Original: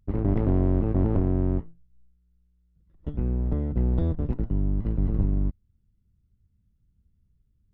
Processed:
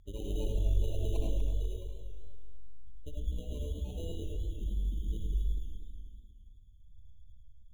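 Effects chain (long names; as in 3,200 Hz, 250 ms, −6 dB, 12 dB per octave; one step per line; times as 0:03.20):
in parallel at −2.5 dB: brickwall limiter −21.5 dBFS, peak gain reduction 8.5 dB
on the sum: graphic EQ with 10 bands 125 Hz −10 dB, 250 Hz −7 dB, 500 Hz +3 dB, 1,000 Hz +5 dB
downward compressor 2 to 1, threshold −42 dBFS, peak gain reduction 13 dB
hum removal 53.31 Hz, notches 7
upward compression, threshold −50 dBFS
echo whose low-pass opens from repeat to repeat 106 ms, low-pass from 400 Hz, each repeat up 1 octave, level 0 dB
reverb reduction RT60 0.83 s
gate on every frequency bin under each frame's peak −15 dB strong
decimation without filtering 13×
convolution reverb RT60 0.45 s, pre-delay 40 ms, DRR 0.5 dB
feedback echo with a swinging delay time 244 ms, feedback 43%, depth 89 cents, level −10 dB
level −3.5 dB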